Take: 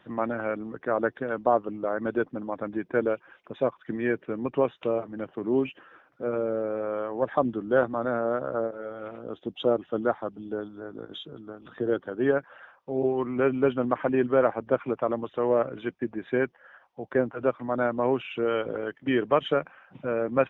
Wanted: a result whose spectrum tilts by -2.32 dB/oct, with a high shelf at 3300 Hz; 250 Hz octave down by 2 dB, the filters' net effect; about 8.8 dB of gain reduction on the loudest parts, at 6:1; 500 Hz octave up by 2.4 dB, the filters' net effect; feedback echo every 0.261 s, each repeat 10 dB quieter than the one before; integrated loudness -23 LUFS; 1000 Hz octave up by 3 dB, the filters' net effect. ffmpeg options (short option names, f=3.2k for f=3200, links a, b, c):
-af "equalizer=f=250:t=o:g=-4,equalizer=f=500:t=o:g=3,equalizer=f=1k:t=o:g=4,highshelf=f=3.3k:g=-5.5,acompressor=threshold=-24dB:ratio=6,aecho=1:1:261|522|783|1044:0.316|0.101|0.0324|0.0104,volume=8dB"